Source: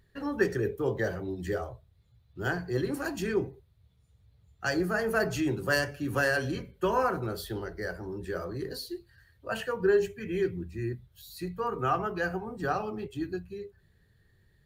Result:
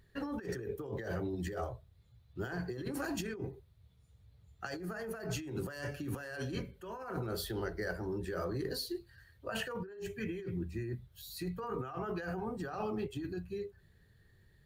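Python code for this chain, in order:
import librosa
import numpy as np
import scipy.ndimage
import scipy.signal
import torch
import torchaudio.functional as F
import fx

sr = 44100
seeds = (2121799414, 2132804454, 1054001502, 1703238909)

y = fx.over_compress(x, sr, threshold_db=-35.0, ratio=-1.0)
y = y * librosa.db_to_amplitude(-4.0)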